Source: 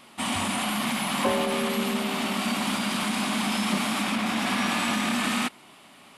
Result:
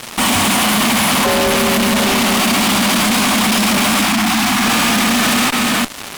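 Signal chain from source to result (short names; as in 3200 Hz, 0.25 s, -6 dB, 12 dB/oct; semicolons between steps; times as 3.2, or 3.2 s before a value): reverse delay 0.344 s, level -11 dB; fuzz box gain 49 dB, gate -47 dBFS; 4.05–4.64 Chebyshev band-stop 330–710 Hz, order 2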